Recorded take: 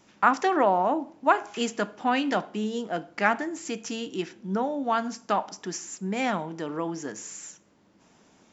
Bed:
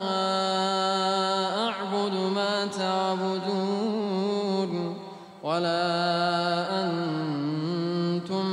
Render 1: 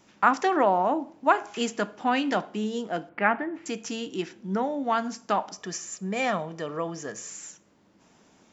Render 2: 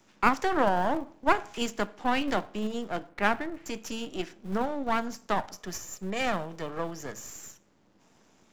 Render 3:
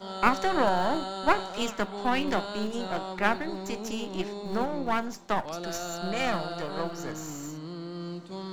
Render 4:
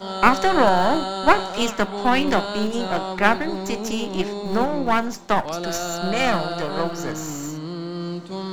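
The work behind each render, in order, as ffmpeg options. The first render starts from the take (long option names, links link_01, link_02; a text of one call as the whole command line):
ffmpeg -i in.wav -filter_complex "[0:a]asettb=1/sr,asplit=3[link_01][link_02][link_03];[link_01]atrim=end=3.094[link_04];[link_02]atrim=start=3.09:end=3.66,asetpts=PTS-STARTPTS,afade=type=in:duration=0.004:curve=qsin,afade=type=out:start_time=0.566:duration=0.004:curve=qsin,lowpass=frequency=2700:width=0.5412,lowpass=frequency=2700:width=1.3066[link_05];[link_03]atrim=start=3.656[link_06];[link_04][link_05]acrossfade=duration=0.004:curve1=hsin:curve2=qsin[link_07];[link_07][link_06]acrossfade=duration=0.004:curve1=qsin:curve2=hsin,asettb=1/sr,asplit=3[link_08][link_09][link_10];[link_08]atrim=end=4.524[link_11];[link_09]atrim=start=4.52:end=4.94,asetpts=PTS-STARTPTS,afade=type=in:duration=0.004:curve=qsin,afade=type=out:start_time=0.416:duration=0.004:curve=qsin,equalizer=frequency=2000:width_type=o:width=0.28:gain=8.5[link_12];[link_10]atrim=start=4.936[link_13];[link_11][link_12]acrossfade=duration=0.004:curve1=hsin:curve2=qsin[link_14];[link_14][link_13]acrossfade=duration=0.004:curve1=qsin:curve2=hsin,asettb=1/sr,asplit=3[link_15][link_16][link_17];[link_15]atrim=end=5.544[link_18];[link_16]atrim=start=5.54:end=7.3,asetpts=PTS-STARTPTS,afade=type=in:duration=0.004:curve=qsin,afade=type=out:start_time=1.756:duration=0.004:curve=qsin,aecho=1:1:1.7:0.49,atrim=end_sample=77616[link_19];[link_17]atrim=start=7.296[link_20];[link_18][link_19]acrossfade=duration=0.004:curve1=hsin:curve2=qsin[link_21];[link_21][link_20]acrossfade=duration=0.004:curve1=qsin:curve2=hsin" out.wav
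ffmpeg -i in.wav -filter_complex "[0:a]aeval=exprs='if(lt(val(0),0),0.251*val(0),val(0))':channel_layout=same,acrossover=split=120|590|3400[link_01][link_02][link_03][link_04];[link_01]acrusher=bits=2:mode=log:mix=0:aa=0.000001[link_05];[link_05][link_02][link_03][link_04]amix=inputs=4:normalize=0" out.wav
ffmpeg -i in.wav -i bed.wav -filter_complex "[1:a]volume=-10.5dB[link_01];[0:a][link_01]amix=inputs=2:normalize=0" out.wav
ffmpeg -i in.wav -af "volume=8dB,alimiter=limit=-1dB:level=0:latency=1" out.wav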